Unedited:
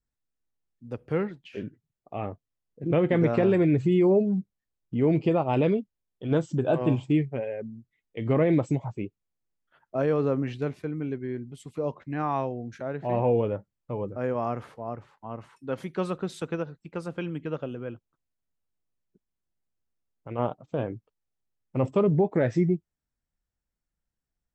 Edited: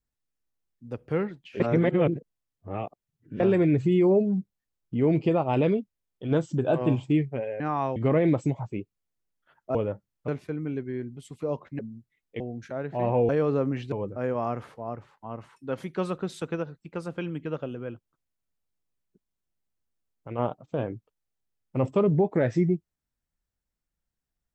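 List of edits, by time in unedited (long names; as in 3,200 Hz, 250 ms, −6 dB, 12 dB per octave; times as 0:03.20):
0:01.60–0:03.40: reverse
0:07.60–0:08.21: swap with 0:12.14–0:12.50
0:10.00–0:10.63: swap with 0:13.39–0:13.92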